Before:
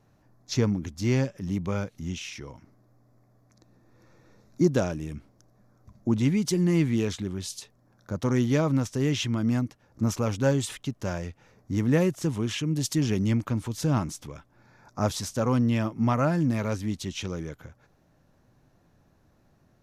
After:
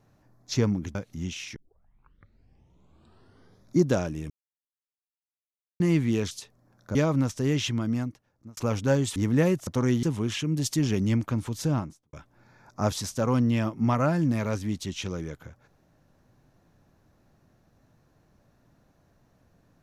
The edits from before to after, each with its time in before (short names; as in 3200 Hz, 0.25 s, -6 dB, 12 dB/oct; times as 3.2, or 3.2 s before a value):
0.95–1.8 cut
2.41 tape start 2.22 s
5.15–6.65 mute
7.16–7.51 cut
8.15–8.51 move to 12.22
9.26–10.13 fade out
10.72–11.71 cut
13.78–14.32 studio fade out